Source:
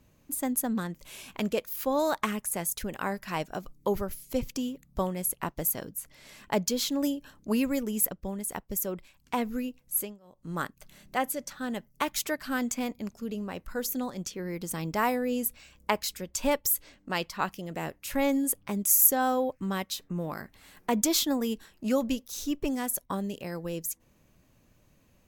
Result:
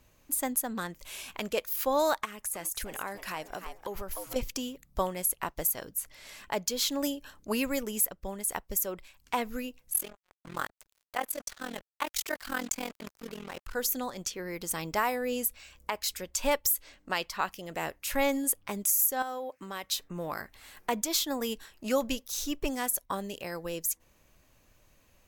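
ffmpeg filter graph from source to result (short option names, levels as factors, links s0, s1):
-filter_complex "[0:a]asettb=1/sr,asplit=3[s0][s1][s2];[s0]atrim=end=2.254[s3];[s1]atrim=start=2.25:end=4.36,asetpts=PTS-STARTPTS,afade=t=in:d=0.004:c=qsin,afade=t=out:st=2.106:d=0.004:c=qsin,asplit=5[s4][s5][s6][s7][s8];[s5]adelay=300,afreqshift=110,volume=0.168[s9];[s6]adelay=600,afreqshift=220,volume=0.0668[s10];[s7]adelay=900,afreqshift=330,volume=0.0269[s11];[s8]adelay=1200,afreqshift=440,volume=0.0107[s12];[s4][s9][s10][s11][s12]amix=inputs=5:normalize=0,atrim=end_sample=93051,acompressor=threshold=0.0224:ratio=5:attack=3.2:release=140:knee=1:detection=peak[s13];[s2]atrim=start=4.356[s14];[s3][s13]acrossfade=d=0.004:c1=hsin:c2=qsin[s15];[s15][s14]acrossfade=d=0.004:c1=qsin:c2=hsin,asettb=1/sr,asplit=3[s16][s17][s18];[s16]atrim=end=9.934[s19];[s17]atrim=start=9.93:end=13.75,asetpts=PTS-STARTPTS,afade=t=in:d=0.004:c=qsin,afade=t=out:st=3.816:d=0.004:c=qsin,acrusher=bits=6:mix=0:aa=0.5,tremolo=f=42:d=0.919[s20];[s18]atrim=start=13.746[s21];[s19][s20]acrossfade=d=0.004:c1=hsin:c2=qsin[s22];[s22][s21]acrossfade=d=0.004:c1=qsin:c2=hsin,asettb=1/sr,asplit=3[s23][s24][s25];[s23]atrim=end=19.224[s26];[s24]atrim=start=19.22:end=19.84,asetpts=PTS-STARTPTS,afade=t=in:d=0.004:c=qsin,afade=t=out:st=0.616:d=0.004:c=qsin,highpass=210,acompressor=threshold=0.02:ratio=4:attack=3.2:release=140:knee=1:detection=peak[s27];[s25]atrim=start=19.836[s28];[s26][s27]acrossfade=d=0.004:c1=hsin:c2=qsin[s29];[s29][s28]acrossfade=d=0.004:c1=qsin:c2=hsin,equalizer=f=180:w=0.58:g=-10.5,alimiter=limit=0.112:level=0:latency=1:release=258,volume=1.5"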